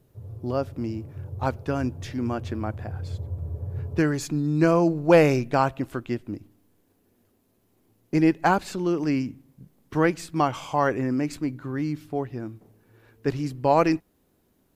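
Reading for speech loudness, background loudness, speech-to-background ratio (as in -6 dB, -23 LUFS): -25.0 LUFS, -37.0 LUFS, 12.0 dB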